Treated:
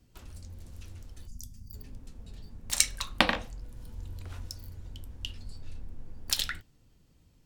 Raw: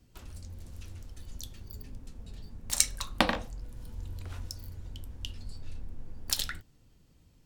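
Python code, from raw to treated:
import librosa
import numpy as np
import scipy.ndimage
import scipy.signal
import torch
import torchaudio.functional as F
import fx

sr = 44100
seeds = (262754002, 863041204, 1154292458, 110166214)

y = fx.spec_box(x, sr, start_s=1.27, length_s=0.46, low_hz=270.0, high_hz=4600.0, gain_db=-17)
y = fx.dynamic_eq(y, sr, hz=2500.0, q=0.78, threshold_db=-49.0, ratio=4.0, max_db=6)
y = y * librosa.db_to_amplitude(-1.0)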